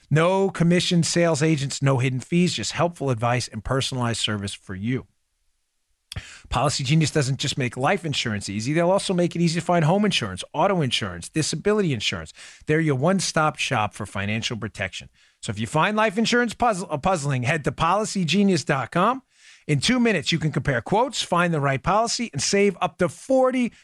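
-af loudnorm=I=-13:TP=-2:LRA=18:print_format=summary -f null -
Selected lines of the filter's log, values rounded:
Input Integrated:    -22.3 LUFS
Input True Peak:      -8.7 dBTP
Input LRA:             3.2 LU
Input Threshold:     -32.6 LUFS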